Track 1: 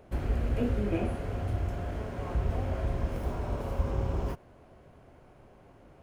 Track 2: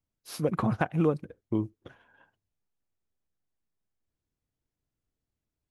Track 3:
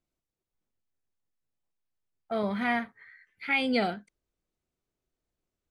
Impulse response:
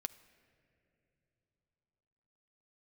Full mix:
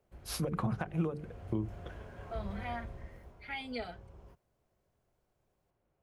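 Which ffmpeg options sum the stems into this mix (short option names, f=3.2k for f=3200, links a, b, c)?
-filter_complex "[0:a]volume=-12dB,afade=t=in:st=1.12:d=0.48:silence=0.375837,afade=t=out:st=2.65:d=0.69:silence=0.266073[a];[1:a]alimiter=limit=-22dB:level=0:latency=1:release=462,bandreject=f=50:t=h:w=6,bandreject=f=100:t=h:w=6,bandreject=f=150:t=h:w=6,bandreject=f=200:t=h:w=6,bandreject=f=250:t=h:w=6,bandreject=f=300:t=h:w=6,bandreject=f=350:t=h:w=6,bandreject=f=400:t=h:w=6,bandreject=f=450:t=h:w=6,volume=2.5dB,asplit=2[b][c];[2:a]asplit=2[d][e];[e]adelay=4.2,afreqshift=0.51[f];[d][f]amix=inputs=2:normalize=1,volume=-8.5dB[g];[c]apad=whole_len=265847[h];[a][h]sidechaincompress=threshold=-32dB:ratio=8:attack=21:release=157[i];[i][b][g]amix=inputs=3:normalize=0,equalizer=f=270:w=7.2:g=-9.5,acrossover=split=190[j][k];[k]acompressor=threshold=-33dB:ratio=6[l];[j][l]amix=inputs=2:normalize=0"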